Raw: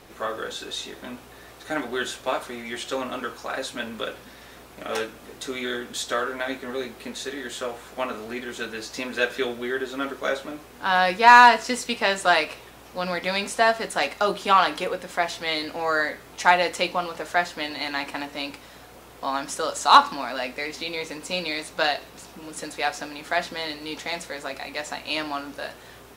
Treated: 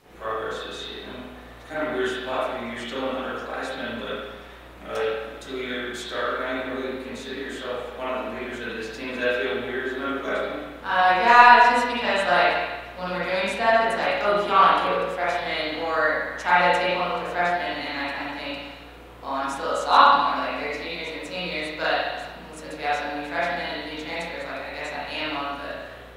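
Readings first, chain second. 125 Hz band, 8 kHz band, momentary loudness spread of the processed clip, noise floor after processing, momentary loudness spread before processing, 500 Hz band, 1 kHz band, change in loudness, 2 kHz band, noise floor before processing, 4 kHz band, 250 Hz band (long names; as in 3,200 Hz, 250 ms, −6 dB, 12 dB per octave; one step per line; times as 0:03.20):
+2.0 dB, can't be measured, 15 LU, −43 dBFS, 14 LU, +2.0 dB, +1.0 dB, +1.0 dB, +0.5 dB, −47 dBFS, −2.0 dB, +0.5 dB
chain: spring reverb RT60 1.2 s, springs 34/52 ms, chirp 40 ms, DRR −10 dB
level −9 dB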